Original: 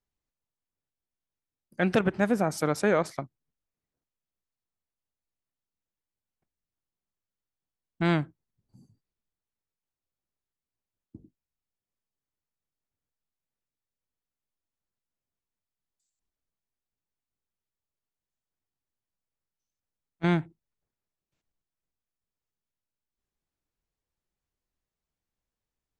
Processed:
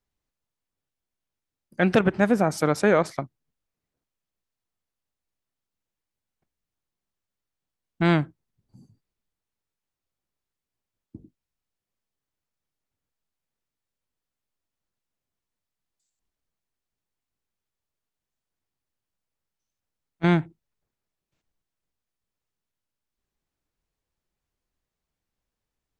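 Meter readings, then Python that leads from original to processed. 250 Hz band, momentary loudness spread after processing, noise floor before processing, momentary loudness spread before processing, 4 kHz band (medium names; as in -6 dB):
+4.5 dB, 15 LU, under -85 dBFS, 15 LU, +3.5 dB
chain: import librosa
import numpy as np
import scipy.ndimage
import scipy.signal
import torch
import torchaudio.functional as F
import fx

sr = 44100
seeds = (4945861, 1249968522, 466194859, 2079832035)

y = fx.high_shelf(x, sr, hz=7900.0, db=-5.0)
y = F.gain(torch.from_numpy(y), 4.5).numpy()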